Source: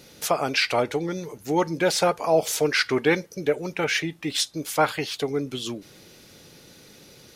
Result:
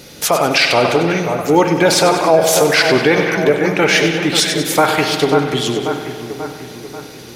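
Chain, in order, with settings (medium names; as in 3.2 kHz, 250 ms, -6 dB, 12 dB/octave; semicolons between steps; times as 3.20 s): two-band feedback delay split 2.3 kHz, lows 538 ms, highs 96 ms, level -9 dB; spring tank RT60 1.9 s, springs 48 ms, chirp 40 ms, DRR 6.5 dB; loudness maximiser +12 dB; trim -1 dB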